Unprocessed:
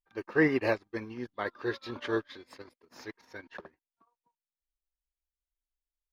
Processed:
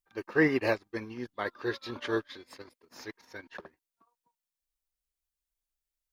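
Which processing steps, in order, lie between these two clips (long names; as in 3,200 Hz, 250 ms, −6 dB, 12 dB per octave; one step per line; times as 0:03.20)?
high-shelf EQ 4,500 Hz +6 dB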